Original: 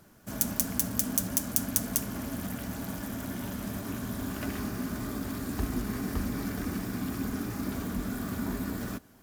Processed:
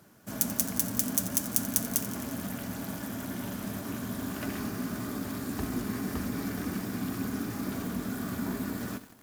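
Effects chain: high-pass 94 Hz 12 dB/octave; bit-crushed delay 88 ms, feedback 80%, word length 7-bit, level -14 dB

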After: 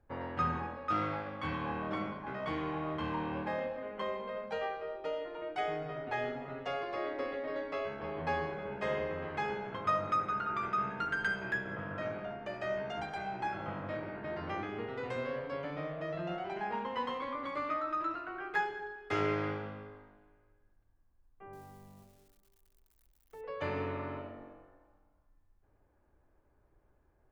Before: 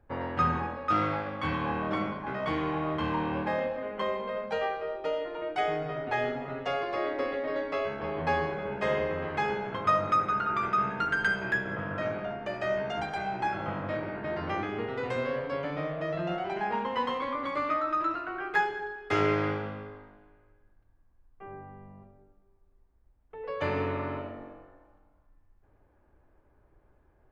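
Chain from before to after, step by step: 21.53–23.41 s: zero-crossing glitches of -47 dBFS; trim -6 dB

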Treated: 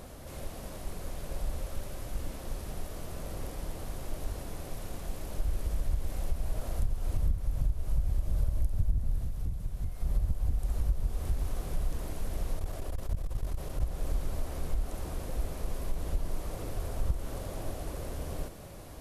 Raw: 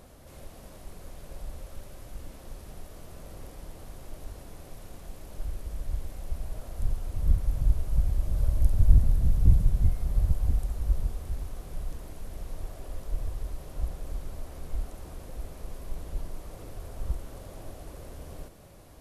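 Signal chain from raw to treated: compression 8:1, threshold -29 dBFS, peak gain reduction 20 dB; 9.18–10.02 s: bass shelf 400 Hz -6 dB; 12.57–13.81 s: transformer saturation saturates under 57 Hz; trim +5.5 dB

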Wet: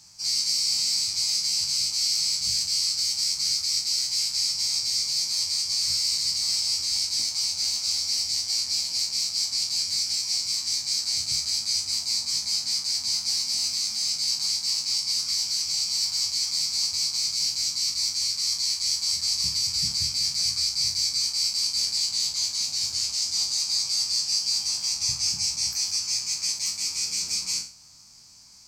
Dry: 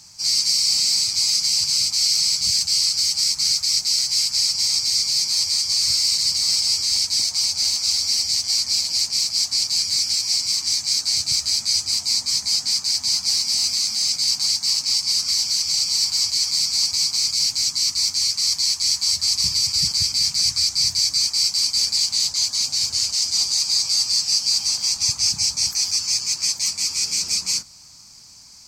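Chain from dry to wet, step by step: spectral sustain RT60 0.40 s; trim -7 dB

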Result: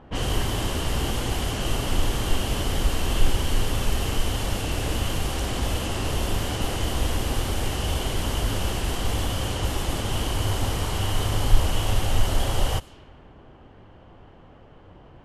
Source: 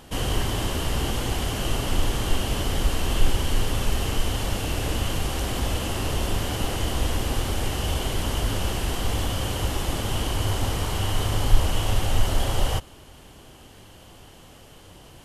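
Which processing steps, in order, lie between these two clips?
level-controlled noise filter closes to 1.3 kHz, open at -21 dBFS

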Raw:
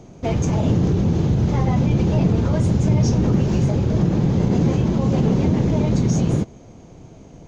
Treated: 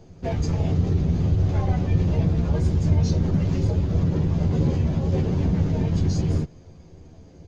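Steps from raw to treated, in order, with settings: harmony voices -5 st 0 dB; chorus voices 6, 0.5 Hz, delay 12 ms, depth 1.5 ms; trim -5.5 dB

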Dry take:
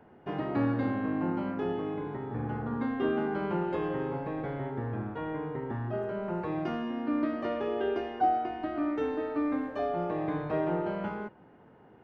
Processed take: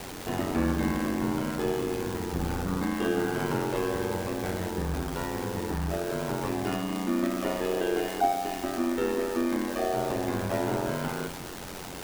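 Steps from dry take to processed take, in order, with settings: jump at every zero crossing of -37 dBFS; treble shelf 3.2 kHz +10.5 dB; on a send at -9 dB: reverberation RT60 1.2 s, pre-delay 6 ms; on the sum: ring modulator 45 Hz; bass shelf 65 Hz +10 dB; trim +2.5 dB

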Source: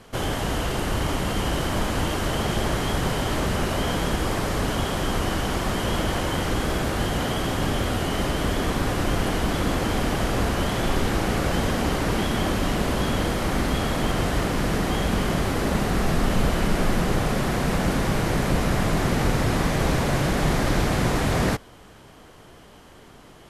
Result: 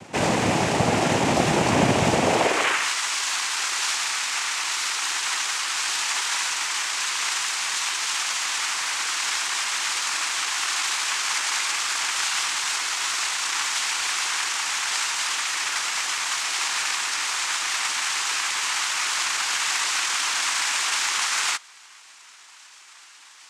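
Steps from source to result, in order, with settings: high-pass sweep 210 Hz -> 2 kHz, 2.18–2.94 s; formant shift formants +5 st; noise-vocoded speech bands 4; trim +4 dB

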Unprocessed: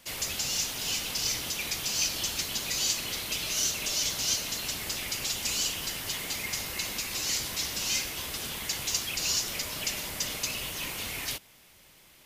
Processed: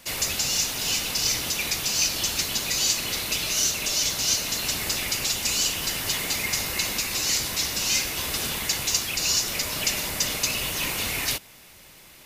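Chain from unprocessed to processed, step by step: band-stop 3.2 kHz, Q 18; in parallel at 0 dB: gain riding 0.5 s

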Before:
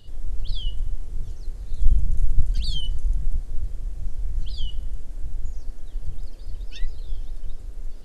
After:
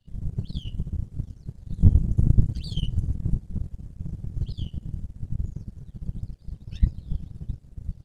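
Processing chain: whisper effect; power-law waveshaper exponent 1.4; trim -1 dB

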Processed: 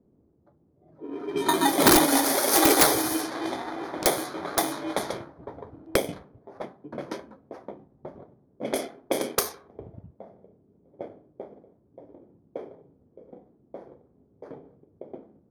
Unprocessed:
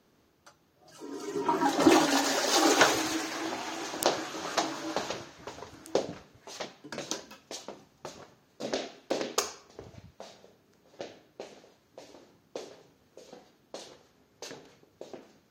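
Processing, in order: bit-reversed sample order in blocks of 16 samples; level-controlled noise filter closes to 390 Hz, open at -27 dBFS; integer overflow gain 14.5 dB; trim +5.5 dB

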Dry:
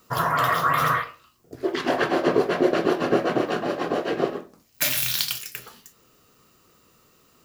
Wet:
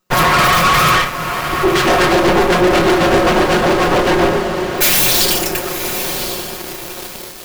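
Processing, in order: comb filter that takes the minimum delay 5.5 ms; echo that smears into a reverb 1061 ms, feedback 50%, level -13 dB; waveshaping leveller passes 5

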